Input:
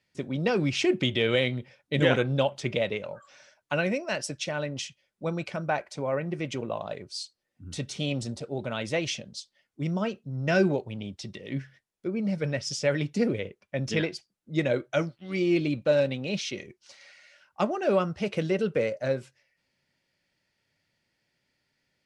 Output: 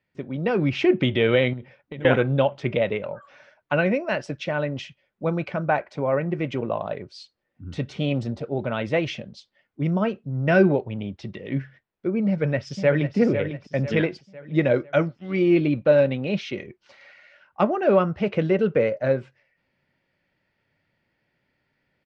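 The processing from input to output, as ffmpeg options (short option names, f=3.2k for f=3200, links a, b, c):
-filter_complex "[0:a]asettb=1/sr,asplit=3[a][b][c];[a]atrim=end=1.534[d];[b]atrim=start=1.53:end=2.05,asetpts=PTS-STARTPTS,afade=t=in:d=0.004:c=qsin,afade=t=out:st=0.516:d=0.004:c=qsin,acompressor=threshold=-35dB:ratio=16:attack=3.2:release=140:knee=1:detection=peak[e];[c]atrim=start=2.046[f];[d][e]acrossfade=d=0.004:c1=hsin:c2=qsin[g];[g][f]acrossfade=d=0.004:c1=qsin:c2=hsin,asplit=2[h][i];[i]afade=t=in:st=12.27:d=0.01,afade=t=out:st=13.16:d=0.01,aecho=0:1:500|1000|1500|2000|2500:0.354813|0.159666|0.0718497|0.0323324|0.0145496[j];[h][j]amix=inputs=2:normalize=0,lowpass=2.3k,dynaudnorm=f=380:g=3:m=6dB"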